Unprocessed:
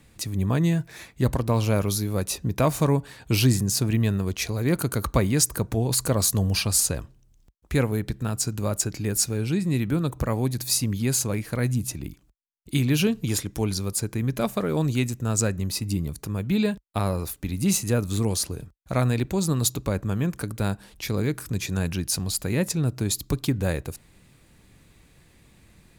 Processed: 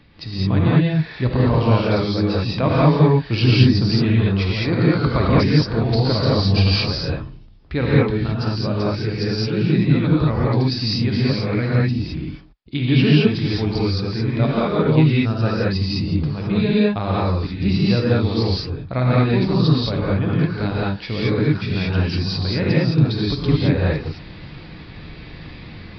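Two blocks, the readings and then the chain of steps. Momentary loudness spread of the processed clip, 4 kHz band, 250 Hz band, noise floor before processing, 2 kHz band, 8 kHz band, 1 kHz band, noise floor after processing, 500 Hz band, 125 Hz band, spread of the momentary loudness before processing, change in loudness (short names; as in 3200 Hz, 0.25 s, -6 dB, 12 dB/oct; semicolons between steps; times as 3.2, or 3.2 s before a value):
10 LU, +6.5 dB, +7.5 dB, -58 dBFS, +7.5 dB, under -20 dB, +7.5 dB, -38 dBFS, +7.5 dB, +7.5 dB, 7 LU, +6.5 dB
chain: reverse; upward compressor, threshold -31 dBFS; reverse; non-linear reverb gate 0.24 s rising, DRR -6.5 dB; downsampling 11025 Hz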